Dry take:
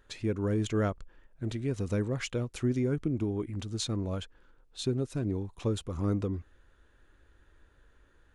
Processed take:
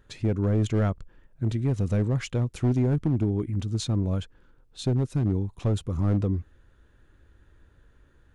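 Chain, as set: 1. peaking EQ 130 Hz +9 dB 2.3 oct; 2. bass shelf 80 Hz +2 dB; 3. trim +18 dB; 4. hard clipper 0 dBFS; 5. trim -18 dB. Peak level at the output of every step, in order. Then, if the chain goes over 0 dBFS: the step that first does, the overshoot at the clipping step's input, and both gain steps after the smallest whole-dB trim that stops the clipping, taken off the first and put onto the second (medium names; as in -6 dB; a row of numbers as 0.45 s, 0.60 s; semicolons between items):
-12.0 dBFS, -11.5 dBFS, +6.5 dBFS, 0.0 dBFS, -18.0 dBFS; step 3, 6.5 dB; step 3 +11 dB, step 5 -11 dB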